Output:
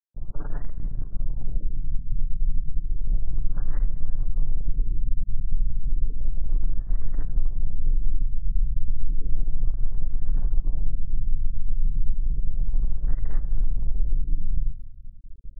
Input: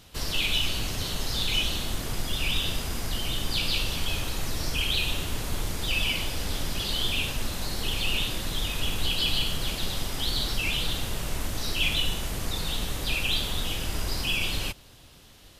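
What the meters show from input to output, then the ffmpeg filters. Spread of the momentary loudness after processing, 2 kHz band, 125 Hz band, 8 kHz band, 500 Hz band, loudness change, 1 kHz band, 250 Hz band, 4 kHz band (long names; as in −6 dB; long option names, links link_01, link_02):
5 LU, below −25 dB, +2.5 dB, below −40 dB, −16.0 dB, −3.5 dB, −19.5 dB, −7.0 dB, below −40 dB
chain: -filter_complex "[0:a]aecho=1:1:6.9:0.95,asubboost=boost=3.5:cutoff=60,areverse,acompressor=mode=upward:threshold=-19dB:ratio=2.5,areverse,anlmdn=1580,bandreject=frequency=4600:width=24,adynamicequalizer=threshold=0.00355:dfrequency=630:dqfactor=0.83:tfrequency=630:tqfactor=0.83:attack=5:release=100:ratio=0.375:range=3:mode=cutabove:tftype=bell,asplit=2[link_01][link_02];[link_02]adelay=87,lowpass=frequency=1100:poles=1,volume=-17dB,asplit=2[link_03][link_04];[link_04]adelay=87,lowpass=frequency=1100:poles=1,volume=0.49,asplit=2[link_05][link_06];[link_06]adelay=87,lowpass=frequency=1100:poles=1,volume=0.49,asplit=2[link_07][link_08];[link_08]adelay=87,lowpass=frequency=1100:poles=1,volume=0.49[link_09];[link_01][link_03][link_05][link_07][link_09]amix=inputs=5:normalize=0,aeval=exprs='sgn(val(0))*max(abs(val(0))-0.01,0)':channel_layout=same,acompressor=threshold=-15dB:ratio=2,afftfilt=real='re*lt(b*sr/1024,230*pow(2100/230,0.5+0.5*sin(2*PI*0.32*pts/sr)))':imag='im*lt(b*sr/1024,230*pow(2100/230,0.5+0.5*sin(2*PI*0.32*pts/sr)))':win_size=1024:overlap=0.75"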